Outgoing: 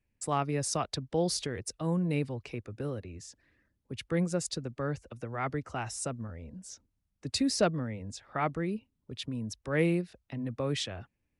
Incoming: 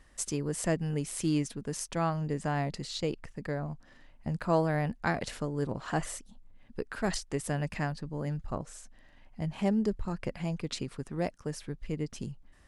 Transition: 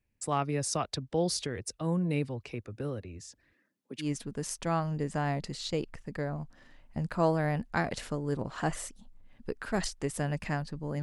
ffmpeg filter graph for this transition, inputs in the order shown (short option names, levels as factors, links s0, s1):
-filter_complex "[0:a]asettb=1/sr,asplit=3[s0][s1][s2];[s0]atrim=end=3.534[s3];[s1]atrim=start=3.53:end=4.12,asetpts=PTS-STARTPTS,afade=t=in:d=0.004:c=qsin,afade=t=out:st=0.586:d=0.004:c=qsin,highpass=f=190:w=0.5412,highpass=f=190:w=1.3066[s4];[s2]atrim=start=4.116[s5];[s3][s4]acrossfade=d=0.004:c1=hsin:c2=qsin[s6];[s6][s5]acrossfade=d=0.004:c1=qsin:c2=hsin,apad=whole_dur=11.02,atrim=end=11.02,atrim=end=4.12,asetpts=PTS-STARTPTS[s7];[1:a]atrim=start=1.28:end=8.32,asetpts=PTS-STARTPTS[s8];[s7][s8]acrossfade=d=0.14:c1=tri:c2=tri"